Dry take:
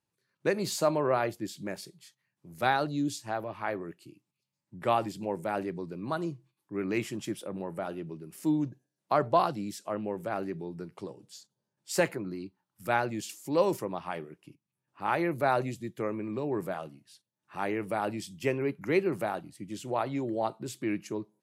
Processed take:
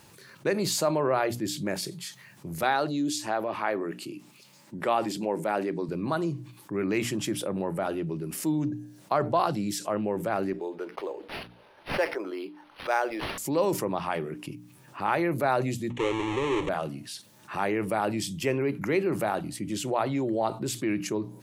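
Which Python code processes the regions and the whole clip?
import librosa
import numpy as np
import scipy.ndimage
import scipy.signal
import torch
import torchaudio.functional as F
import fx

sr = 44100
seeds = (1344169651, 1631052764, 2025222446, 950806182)

y = fx.chain(x, sr, fx.highpass(hz=210.0, slope=12),
    fx.high_shelf(hz=10000.0, db=-4.0), at=(2.63, 5.89))
y = fx.chain(y, sr, fx.highpass(hz=400.0, slope=24),
    fx.resample_linear(factor=6), at=(10.53, 13.38))
y = fx.chain(y, sr, fx.halfwave_hold(),
    fx.lowpass(hz=6500.0, slope=24),
    fx.fixed_phaser(hz=1000.0, stages=8), at=(15.9, 16.69))
y = fx.hum_notches(y, sr, base_hz=60, count=5)
y = fx.env_flatten(y, sr, amount_pct=50)
y = y * librosa.db_to_amplitude(-1.5)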